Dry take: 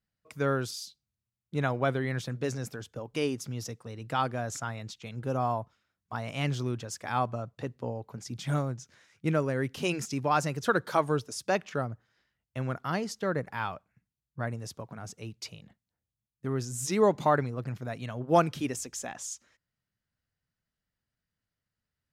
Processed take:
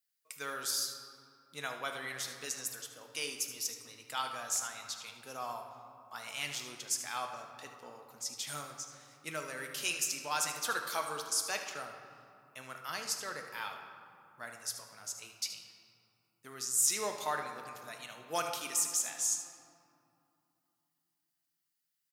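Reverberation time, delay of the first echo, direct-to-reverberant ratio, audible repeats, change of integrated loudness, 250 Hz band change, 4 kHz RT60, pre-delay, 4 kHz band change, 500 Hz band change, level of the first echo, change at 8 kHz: 2.7 s, 76 ms, 3.0 dB, 1, -4.5 dB, -19.5 dB, 1.3 s, 5 ms, +3.0 dB, -14.0 dB, -11.0 dB, +7.5 dB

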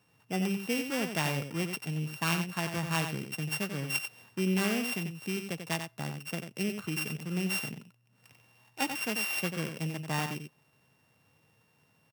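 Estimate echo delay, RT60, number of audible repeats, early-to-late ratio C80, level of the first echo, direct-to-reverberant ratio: 91 ms, none, 1, none, -7.5 dB, none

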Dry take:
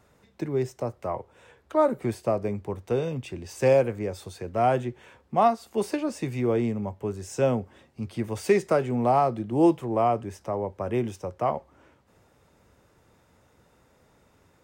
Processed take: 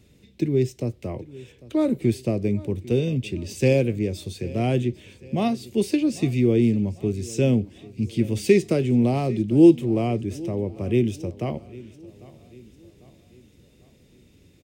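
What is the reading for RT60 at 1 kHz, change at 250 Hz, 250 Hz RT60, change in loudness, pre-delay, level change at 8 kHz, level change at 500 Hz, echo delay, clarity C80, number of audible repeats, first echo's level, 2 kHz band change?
none, +8.0 dB, none, +3.5 dB, none, +4.0 dB, +1.0 dB, 0.798 s, none, 3, -20.0 dB, +2.0 dB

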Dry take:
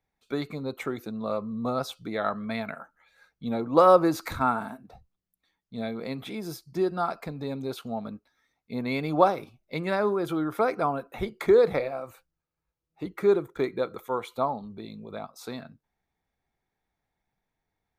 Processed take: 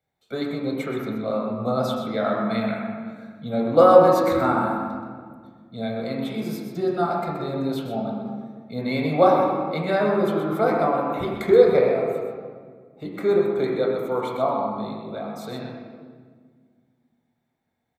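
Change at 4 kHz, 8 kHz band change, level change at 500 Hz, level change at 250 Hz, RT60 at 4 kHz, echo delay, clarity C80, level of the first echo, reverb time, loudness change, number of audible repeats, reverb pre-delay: +4.0 dB, n/a, +6.0 dB, +5.5 dB, 1.2 s, 0.126 s, 1.5 dB, -7.5 dB, 1.7 s, +5.0 dB, 1, 19 ms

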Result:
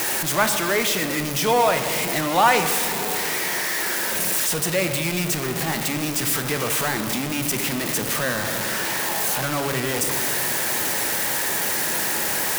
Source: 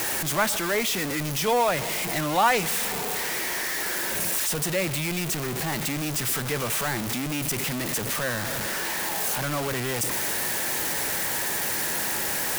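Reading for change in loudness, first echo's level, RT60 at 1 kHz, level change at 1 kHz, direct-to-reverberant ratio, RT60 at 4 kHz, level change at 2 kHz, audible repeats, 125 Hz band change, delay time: +4.0 dB, none, 1.8 s, +4.5 dB, 7.5 dB, 1.4 s, +4.0 dB, none, +2.0 dB, none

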